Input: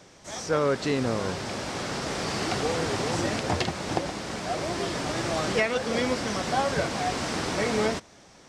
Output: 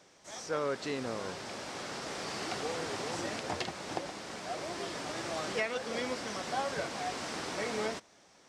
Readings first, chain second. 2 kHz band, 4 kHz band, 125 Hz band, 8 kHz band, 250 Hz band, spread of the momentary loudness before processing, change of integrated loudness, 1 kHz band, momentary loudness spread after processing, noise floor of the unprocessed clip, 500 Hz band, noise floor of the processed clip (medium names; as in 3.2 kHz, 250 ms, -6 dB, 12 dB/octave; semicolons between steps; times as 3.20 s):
-7.5 dB, -7.5 dB, -15.0 dB, -7.5 dB, -11.0 dB, 6 LU, -8.5 dB, -8.0 dB, 6 LU, -53 dBFS, -9.0 dB, -62 dBFS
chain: bass shelf 170 Hz -12 dB; trim -7.5 dB